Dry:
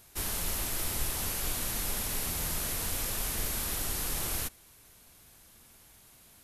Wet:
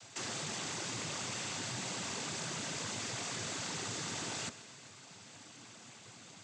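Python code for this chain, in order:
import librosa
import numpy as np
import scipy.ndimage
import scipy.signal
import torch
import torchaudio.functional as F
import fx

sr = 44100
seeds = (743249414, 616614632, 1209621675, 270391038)

p1 = fx.notch(x, sr, hz=500.0, q=12.0)
p2 = fx.noise_vocoder(p1, sr, seeds[0], bands=16)
p3 = fx.over_compress(p2, sr, threshold_db=-45.0, ratio=-0.5)
p4 = p2 + F.gain(torch.from_numpy(p3), 1.5).numpy()
p5 = fx.echo_feedback(p4, sr, ms=129, feedback_pct=59, wet_db=-17.0)
y = F.gain(torch.from_numpy(p5), -4.0).numpy()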